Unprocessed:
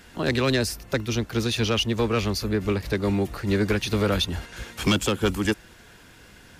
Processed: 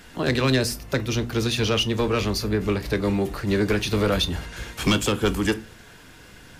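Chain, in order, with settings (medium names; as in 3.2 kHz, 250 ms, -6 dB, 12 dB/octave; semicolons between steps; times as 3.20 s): reverberation RT60 0.30 s, pre-delay 7 ms, DRR 10.5 dB; in parallel at -10.5 dB: saturation -28 dBFS, distortion -6 dB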